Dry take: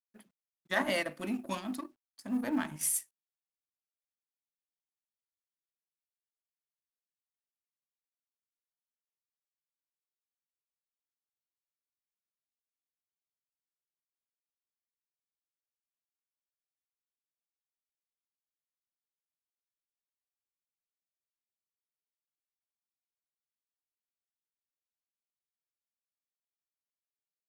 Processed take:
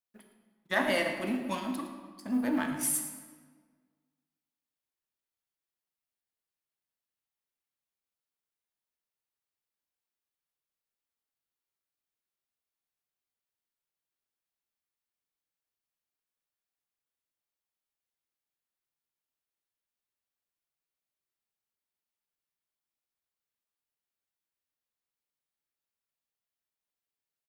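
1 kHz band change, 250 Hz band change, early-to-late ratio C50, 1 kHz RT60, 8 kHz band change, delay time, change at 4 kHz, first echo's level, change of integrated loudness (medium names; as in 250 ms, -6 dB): +3.5 dB, +3.5 dB, 5.5 dB, 1.5 s, +1.0 dB, 112 ms, +2.5 dB, -13.5 dB, +2.5 dB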